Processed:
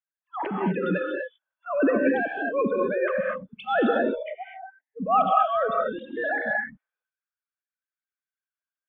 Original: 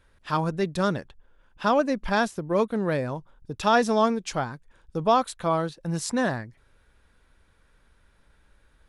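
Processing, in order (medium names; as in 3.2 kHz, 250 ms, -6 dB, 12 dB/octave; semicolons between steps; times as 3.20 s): formants replaced by sine waves; de-esser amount 80%; transient shaper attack -9 dB, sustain +12 dB; 1.70–3.08 s: short-mantissa float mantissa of 8-bit; 3.98–4.97 s: two resonant band-passes 1.2 kHz, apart 1.4 oct; spectral noise reduction 29 dB; gated-style reverb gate 270 ms rising, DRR 0.5 dB; trim -2.5 dB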